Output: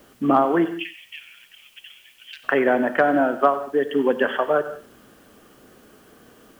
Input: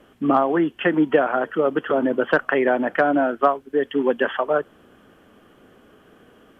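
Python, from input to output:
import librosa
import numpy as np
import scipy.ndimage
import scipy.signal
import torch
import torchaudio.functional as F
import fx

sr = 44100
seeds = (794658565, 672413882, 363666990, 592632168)

y = fx.cheby1_highpass(x, sr, hz=2300.0, order=5, at=(0.64, 2.43), fade=0.02)
y = fx.rider(y, sr, range_db=10, speed_s=2.0)
y = fx.quant_dither(y, sr, seeds[0], bits=10, dither='triangular')
y = y + 10.0 ** (-16.0 / 20.0) * np.pad(y, (int(92 * sr / 1000.0), 0))[:len(y)]
y = fx.rev_gated(y, sr, seeds[1], gate_ms=210, shape='flat', drr_db=11.5)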